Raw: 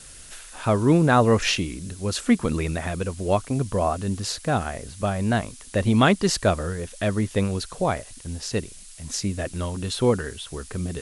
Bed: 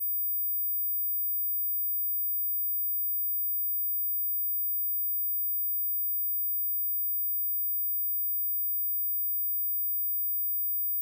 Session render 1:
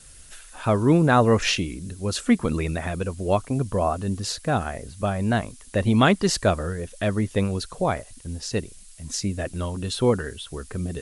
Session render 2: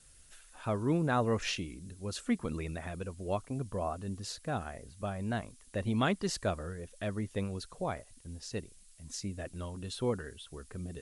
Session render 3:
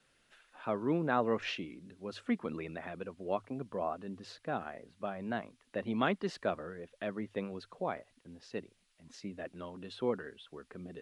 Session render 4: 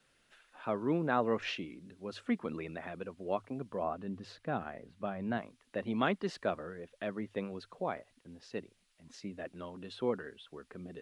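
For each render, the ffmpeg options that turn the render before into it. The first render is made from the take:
-af "afftdn=nr=6:nf=-44"
-af "volume=-12dB"
-filter_complex "[0:a]acrossover=split=170 3800:gain=0.0891 1 0.0891[a][b][c];[a][b][c]amix=inputs=3:normalize=0,bandreject=f=50:t=h:w=6,bandreject=f=100:t=h:w=6"
-filter_complex "[0:a]asettb=1/sr,asplit=3[a][b][c];[a]atrim=end=3.834[d];[b]atrim=start=3.83:end=5.38,asetpts=PTS-STARTPTS,afade=t=in:d=0.004:c=qsin,afade=t=out:st=1.546:d=0.004:c=qsin,bass=f=250:g=5,treble=f=4k:g=-4[e];[c]atrim=start=5.376[f];[d][e]acrossfade=d=0.004:c1=hsin:c2=qsin[g];[g][f]acrossfade=d=0.004:c1=qsin:c2=hsin"

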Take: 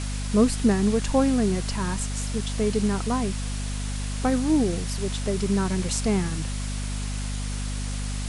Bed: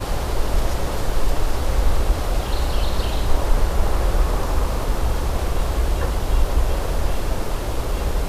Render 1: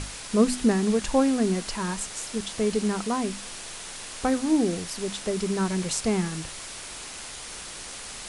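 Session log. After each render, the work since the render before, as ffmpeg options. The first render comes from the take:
-af "bandreject=f=50:t=h:w=6,bandreject=f=100:t=h:w=6,bandreject=f=150:t=h:w=6,bandreject=f=200:t=h:w=6,bandreject=f=250:t=h:w=6,bandreject=f=300:t=h:w=6"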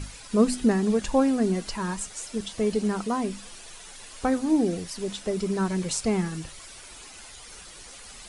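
-af "afftdn=nr=10:nf=-39"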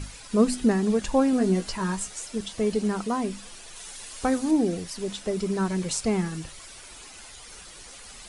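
-filter_complex "[0:a]asettb=1/sr,asplit=3[a][b][c];[a]atrim=end=1.314[d];[b]atrim=start=1.31:end=2.19,asetpts=PTS-STARTPTS,afade=t=in:d=0.004:c=qsin,afade=t=out:st=0.876:d=0.004:c=qsin,asplit=2[e][f];[f]adelay=16,volume=-6dB[g];[e][g]amix=inputs=2:normalize=0,atrim=end_sample=38808[h];[c]atrim=start=2.186[i];[d][h]acrossfade=d=0.004:c1=hsin:c2=qsin[j];[j][i]acrossfade=d=0.004:c1=qsin:c2=hsin,asettb=1/sr,asplit=3[k][l][m];[k]atrim=end=3.764[n];[l]atrim=start=3.76:end=4.51,asetpts=PTS-STARTPTS,afade=t=in:d=0.004:c=qsin,afade=t=out:st=0.746:d=0.004:c=qsin,highshelf=f=4k:g=6[o];[m]atrim=start=4.506[p];[n][o]acrossfade=d=0.004:c1=hsin:c2=qsin[q];[q][p]acrossfade=d=0.004:c1=qsin:c2=hsin"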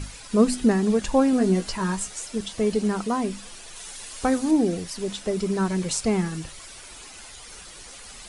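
-af "volume=2dB"

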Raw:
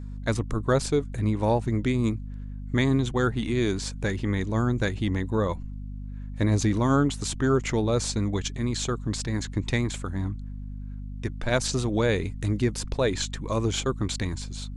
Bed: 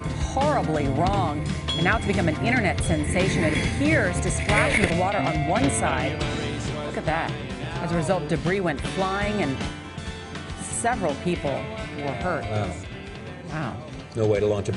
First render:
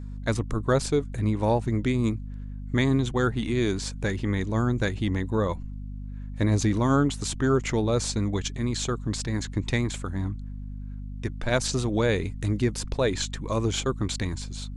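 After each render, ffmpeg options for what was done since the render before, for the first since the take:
-af anull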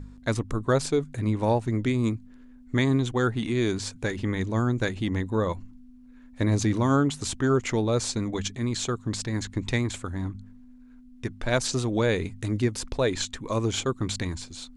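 -af "bandreject=f=50:t=h:w=4,bandreject=f=100:t=h:w=4,bandreject=f=150:t=h:w=4,bandreject=f=200:t=h:w=4"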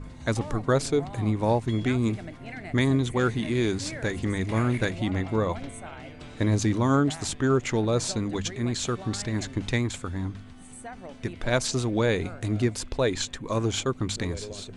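-filter_complex "[1:a]volume=-17.5dB[a];[0:a][a]amix=inputs=2:normalize=0"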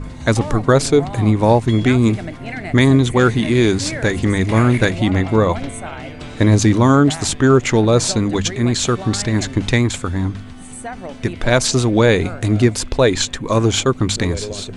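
-af "volume=11dB,alimiter=limit=-2dB:level=0:latency=1"

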